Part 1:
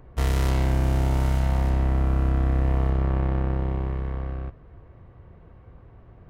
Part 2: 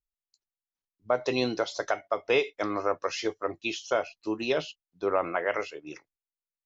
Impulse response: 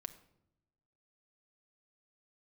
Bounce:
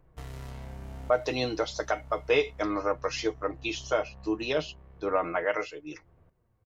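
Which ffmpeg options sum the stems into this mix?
-filter_complex "[0:a]bandreject=f=46.84:t=h:w=4,bandreject=f=93.68:t=h:w=4,bandreject=f=140.52:t=h:w=4,bandreject=f=187.36:t=h:w=4,bandreject=f=234.2:t=h:w=4,bandreject=f=281.04:t=h:w=4,bandreject=f=327.88:t=h:w=4,bandreject=f=374.72:t=h:w=4,acompressor=threshold=0.0631:ratio=6,flanger=delay=5.8:depth=6.6:regen=43:speed=0.4:shape=triangular,volume=0.398,asplit=2[s0][s1];[s1]volume=0.316[s2];[1:a]aecho=1:1:6.5:0.59,volume=0.841,asplit=2[s3][s4];[s4]apad=whole_len=277598[s5];[s0][s5]sidechaincompress=threshold=0.00631:ratio=8:attack=25:release=283[s6];[s2]aecho=0:1:945:1[s7];[s6][s3][s7]amix=inputs=3:normalize=0"

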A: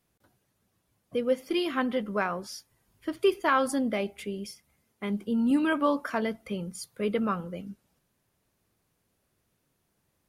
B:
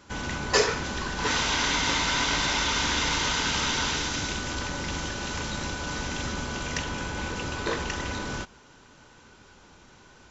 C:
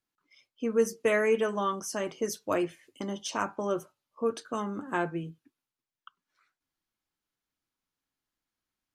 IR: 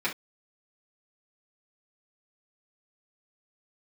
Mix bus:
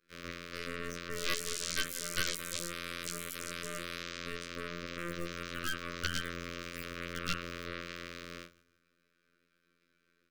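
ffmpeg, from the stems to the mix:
-filter_complex "[0:a]highpass=f=1500:t=q:w=12,highshelf=f=4300:g=-8,aeval=exprs='clip(val(0),-1,0.0794)':c=same,volume=0.668,asplit=3[s0][s1][s2];[s0]atrim=end=3.17,asetpts=PTS-STARTPTS,afade=t=out:st=3.166:d=0.004:c=hsin[s3];[s1]atrim=start=3.17:end=5.08,asetpts=PTS-STARTPTS,volume=0[s4];[s2]atrim=start=5.08,asetpts=PTS-STARTPTS,afade=t=in:d=0.004:c=hsin[s5];[s3][s4][s5]concat=n=3:v=0:a=1,asplit=3[s6][s7][s8];[s7]volume=0.0708[s9];[1:a]highshelf=f=6000:g=-7,alimiter=limit=0.1:level=0:latency=1:release=16,acrusher=bits=8:dc=4:mix=0:aa=0.000001,volume=0.224,asplit=3[s10][s11][s12];[s11]volume=0.531[s13];[s12]volume=0.15[s14];[2:a]equalizer=f=460:w=0.42:g=6,volume=17.8,asoftclip=hard,volume=0.0562,acompressor=threshold=0.0316:ratio=6,adelay=50,volume=0.376,asplit=2[s15][s16];[s16]volume=0.237[s17];[s8]apad=whole_len=454644[s18];[s10][s18]sidechaingate=range=0.0224:threshold=0.00112:ratio=16:detection=peak[s19];[s6][s19]amix=inputs=2:normalize=0,equalizer=f=3000:t=o:w=2.3:g=-6,acompressor=threshold=0.0251:ratio=5,volume=1[s20];[3:a]atrim=start_sample=2205[s21];[s9][s13][s17]amix=inputs=3:normalize=0[s22];[s22][s21]afir=irnorm=-1:irlink=0[s23];[s14]aecho=0:1:178|356|534|712|890:1|0.38|0.144|0.0549|0.0209[s24];[s15][s20][s23][s24]amix=inputs=4:normalize=0,afftfilt=real='hypot(re,im)*cos(PI*b)':imag='0':win_size=2048:overlap=0.75,aeval=exprs='0.178*(cos(1*acos(clip(val(0)/0.178,-1,1)))-cos(1*PI/2))+0.0398*(cos(7*acos(clip(val(0)/0.178,-1,1)))-cos(7*PI/2))+0.0631*(cos(8*acos(clip(val(0)/0.178,-1,1)))-cos(8*PI/2))':c=same,asuperstop=centerf=820:order=12:qfactor=1.7"

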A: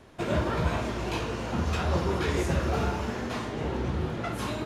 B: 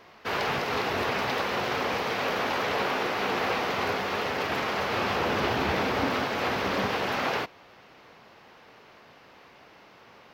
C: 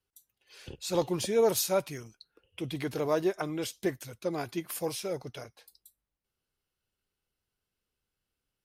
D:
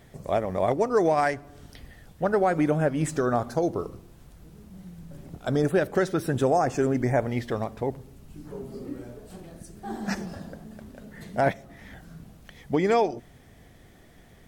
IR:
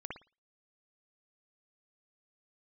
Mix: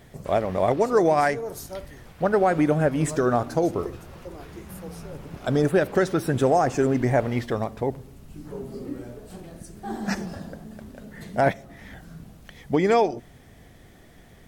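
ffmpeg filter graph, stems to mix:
-filter_complex "[0:a]adelay=2200,volume=0.106[s0];[1:a]alimiter=limit=0.0794:level=0:latency=1:release=382,volume=0.168[s1];[2:a]equalizer=f=2900:t=o:w=1:g=-13.5,volume=0.316,asplit=3[s2][s3][s4];[s3]volume=0.376[s5];[3:a]volume=1.33[s6];[s4]apad=whole_len=455917[s7];[s1][s7]sidechaincompress=threshold=0.00447:ratio=8:attack=25:release=596[s8];[4:a]atrim=start_sample=2205[s9];[s5][s9]afir=irnorm=-1:irlink=0[s10];[s0][s8][s2][s6][s10]amix=inputs=5:normalize=0"

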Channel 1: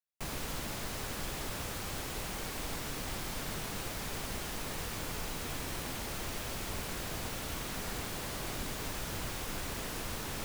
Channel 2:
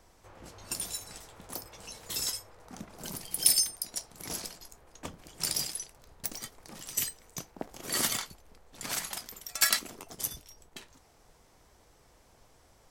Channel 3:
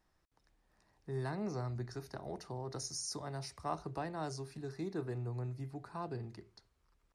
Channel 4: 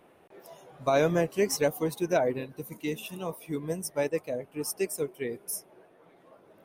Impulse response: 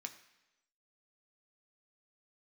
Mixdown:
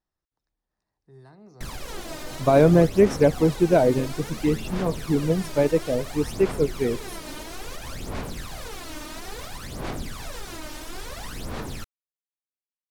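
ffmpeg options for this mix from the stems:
-filter_complex "[0:a]aphaser=in_gain=1:out_gain=1:delay=3.3:decay=0.72:speed=0.59:type=sinusoidal,adelay=1400,volume=1,asplit=2[s0][s1];[s1]volume=0.473[s2];[2:a]volume=0.266[s3];[3:a]lowshelf=f=440:g=11,adelay=1600,volume=1.33[s4];[s0][s3]amix=inputs=2:normalize=0,firequalizer=gain_entry='entry(2300,0);entry(3800,7);entry(11000,14)':delay=0.05:min_phase=1,alimiter=limit=0.0944:level=0:latency=1:release=137,volume=1[s5];[4:a]atrim=start_sample=2205[s6];[s2][s6]afir=irnorm=-1:irlink=0[s7];[s4][s5][s7]amix=inputs=3:normalize=0,aemphasis=mode=reproduction:type=75fm"

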